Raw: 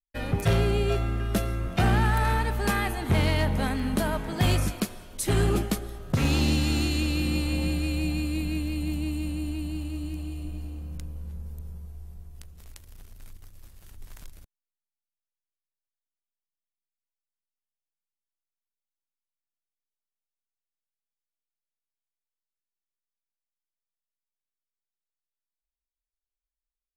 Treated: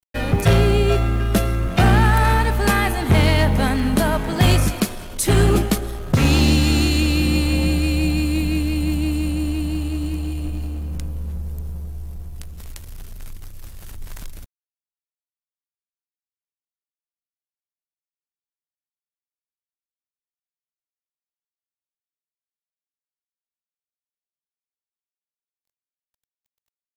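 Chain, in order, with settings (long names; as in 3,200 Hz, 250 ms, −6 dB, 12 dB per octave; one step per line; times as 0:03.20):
mu-law and A-law mismatch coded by mu
level +7.5 dB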